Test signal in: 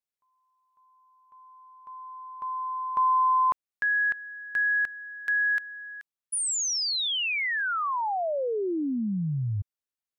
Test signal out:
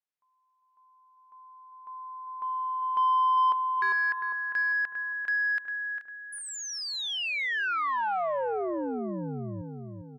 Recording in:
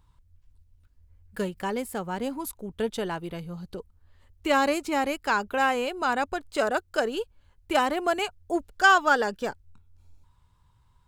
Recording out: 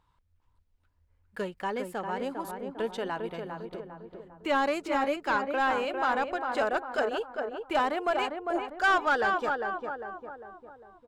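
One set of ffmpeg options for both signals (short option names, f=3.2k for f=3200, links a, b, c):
-filter_complex "[0:a]asplit=2[a][b];[b]adelay=401,lowpass=f=1.4k:p=1,volume=-5dB,asplit=2[c][d];[d]adelay=401,lowpass=f=1.4k:p=1,volume=0.51,asplit=2[e][f];[f]adelay=401,lowpass=f=1.4k:p=1,volume=0.51,asplit=2[g][h];[h]adelay=401,lowpass=f=1.4k:p=1,volume=0.51,asplit=2[i][j];[j]adelay=401,lowpass=f=1.4k:p=1,volume=0.51,asplit=2[k][l];[l]adelay=401,lowpass=f=1.4k:p=1,volume=0.51[m];[a][c][e][g][i][k][m]amix=inputs=7:normalize=0,asplit=2[n][o];[o]highpass=f=720:p=1,volume=15dB,asoftclip=type=tanh:threshold=-7dB[p];[n][p]amix=inputs=2:normalize=0,lowpass=f=1.8k:p=1,volume=-6dB,volume=-7.5dB"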